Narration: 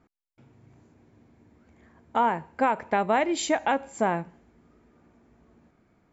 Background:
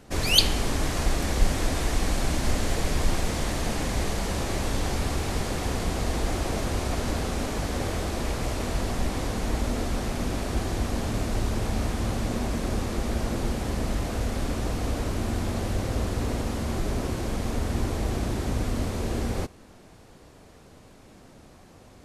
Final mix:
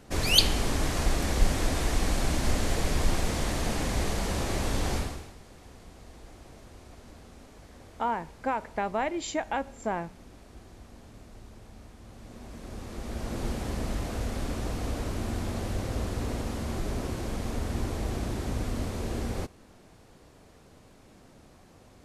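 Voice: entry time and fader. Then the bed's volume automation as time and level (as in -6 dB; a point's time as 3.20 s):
5.85 s, -6.0 dB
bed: 4.97 s -1.5 dB
5.36 s -22 dB
12.02 s -22 dB
13.46 s -4 dB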